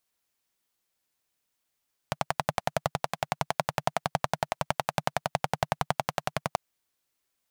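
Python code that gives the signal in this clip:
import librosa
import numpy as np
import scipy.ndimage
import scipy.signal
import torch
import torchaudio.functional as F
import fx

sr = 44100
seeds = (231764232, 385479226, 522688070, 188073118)

y = fx.engine_single(sr, seeds[0], length_s=4.44, rpm=1300, resonances_hz=(150.0, 700.0))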